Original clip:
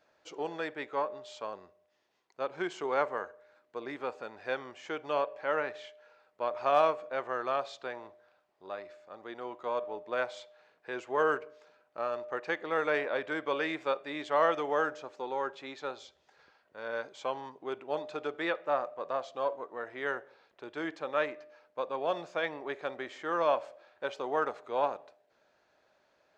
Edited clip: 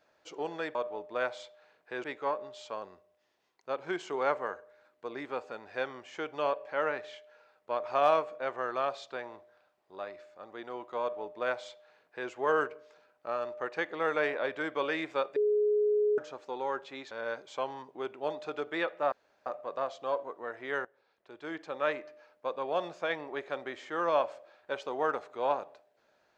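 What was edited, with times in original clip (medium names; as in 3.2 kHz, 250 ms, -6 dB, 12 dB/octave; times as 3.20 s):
9.72–11.01 s: copy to 0.75 s
14.07–14.89 s: bleep 419 Hz -23.5 dBFS
15.82–16.78 s: delete
18.79 s: insert room tone 0.34 s
20.18–21.23 s: fade in, from -16 dB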